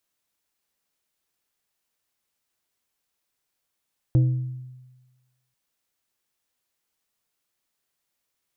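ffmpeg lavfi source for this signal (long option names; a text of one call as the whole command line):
ffmpeg -f lavfi -i "aevalsrc='0.224*pow(10,-3*t/1.24)*sin(2*PI*127*t)+0.0631*pow(10,-3*t/0.653)*sin(2*PI*317.5*t)+0.0178*pow(10,-3*t/0.47)*sin(2*PI*508*t)+0.00501*pow(10,-3*t/0.402)*sin(2*PI*635*t)+0.00141*pow(10,-3*t/0.334)*sin(2*PI*825.5*t)':duration=1.39:sample_rate=44100" out.wav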